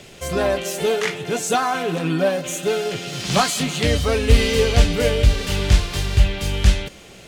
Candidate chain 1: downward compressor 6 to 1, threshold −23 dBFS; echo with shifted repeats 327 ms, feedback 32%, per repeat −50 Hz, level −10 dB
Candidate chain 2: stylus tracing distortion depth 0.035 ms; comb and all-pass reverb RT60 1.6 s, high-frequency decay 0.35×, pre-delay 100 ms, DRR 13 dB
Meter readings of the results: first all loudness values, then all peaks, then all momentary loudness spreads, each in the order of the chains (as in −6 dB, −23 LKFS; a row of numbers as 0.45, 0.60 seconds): −27.0, −20.0 LKFS; −12.5, −2.5 dBFS; 3, 6 LU